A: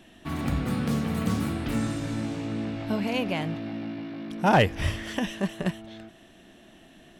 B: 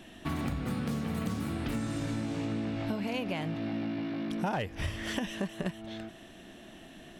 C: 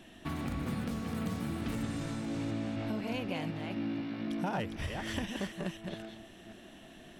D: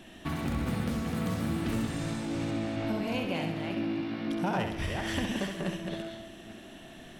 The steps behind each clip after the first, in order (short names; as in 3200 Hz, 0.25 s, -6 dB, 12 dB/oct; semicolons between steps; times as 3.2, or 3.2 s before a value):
compressor 10:1, threshold -32 dBFS, peak gain reduction 17 dB; gain +2.5 dB
reverse delay 0.251 s, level -4.5 dB; gain -3.5 dB
flutter echo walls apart 11.4 m, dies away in 0.65 s; gain +3.5 dB